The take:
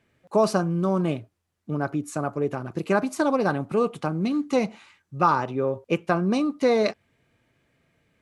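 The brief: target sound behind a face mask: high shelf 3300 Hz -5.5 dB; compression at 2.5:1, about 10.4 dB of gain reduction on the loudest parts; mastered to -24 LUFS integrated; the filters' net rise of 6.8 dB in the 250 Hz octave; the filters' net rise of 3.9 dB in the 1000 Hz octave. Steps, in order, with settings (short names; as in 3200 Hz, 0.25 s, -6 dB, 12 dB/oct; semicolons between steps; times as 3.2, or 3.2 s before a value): bell 250 Hz +8.5 dB; bell 1000 Hz +5 dB; compressor 2.5:1, threshold -28 dBFS; high shelf 3300 Hz -5.5 dB; gain +5 dB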